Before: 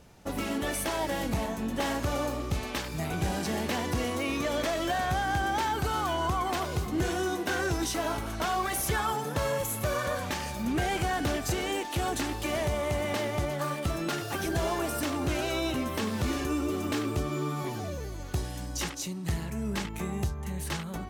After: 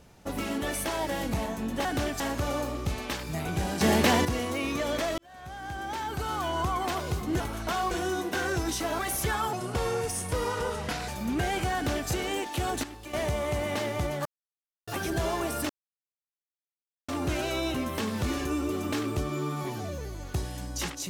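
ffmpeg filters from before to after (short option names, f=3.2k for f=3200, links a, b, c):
-filter_complex "[0:a]asplit=16[a][b][c][d][e][f][g][h][i][j][k][l][m][n][o][p];[a]atrim=end=1.852[q];[b]atrim=start=11.128:end=11.482[r];[c]atrim=start=1.848:end=3.462[s];[d]atrim=start=3.458:end=3.902,asetpts=PTS-STARTPTS,volume=8.5dB[t];[e]atrim=start=3.898:end=4.83,asetpts=PTS-STARTPTS,afade=t=out:st=0.928:d=0.004:c=hsin[u];[f]atrim=start=4.83:end=7.052,asetpts=PTS-STARTPTS,afade=t=in:d=1.44[v];[g]atrim=start=8.128:end=8.642[w];[h]atrim=start=7.048:end=8.132[x];[i]atrim=start=8.638:end=9.184[y];[j]atrim=start=9.18:end=10.47,asetpts=PTS-STARTPTS,asetrate=36603,aresample=44100[z];[k]atrim=start=10.466:end=12.222[aa];[l]atrim=start=12.218:end=12.522,asetpts=PTS-STARTPTS,volume=-10.5dB[ab];[m]atrim=start=12.518:end=13.64,asetpts=PTS-STARTPTS,afade=t=out:st=1.118:d=0.004:c=hsin[ac];[n]atrim=start=13.64:end=14.26,asetpts=PTS-STARTPTS,volume=0[ad];[o]atrim=start=14.26:end=15.08,asetpts=PTS-STARTPTS,afade=t=in:d=0.004:c=hsin,afade=t=out:st=0.816:d=0.004:c=hsin,apad=pad_dur=1.39[ae];[p]atrim=start=15.08,asetpts=PTS-STARTPTS,afade=t=in:d=0.004:c=hsin[af];[q][r]acrossfade=d=0.004:c1=hsin:c2=hsin[ag];[ag][s]acrossfade=d=0.004:c1=hsin:c2=hsin[ah];[ah][t]acrossfade=d=0.004:c1=hsin:c2=hsin[ai];[u][v]concat=n=2:v=0:a=1[aj];[ai][aj]acrossfade=d=0.004:c1=hsin:c2=hsin[ak];[ak][w]acrossfade=d=0.004:c1=hsin:c2=hsin[al];[al][x]acrossfade=d=0.004:c1=hsin:c2=hsin[am];[am][y]acrossfade=d=0.004:c1=hsin:c2=hsin[an];[an][z]acrossfade=d=0.004:c1=hsin:c2=hsin[ao];[ao][aa]acrossfade=d=0.004:c1=hsin:c2=hsin[ap];[ap][ab]acrossfade=d=0.004:c1=hsin:c2=hsin[aq];[ac][ad][ae][af]concat=n=4:v=0:a=1[ar];[aq][ar]acrossfade=d=0.004:c1=hsin:c2=hsin"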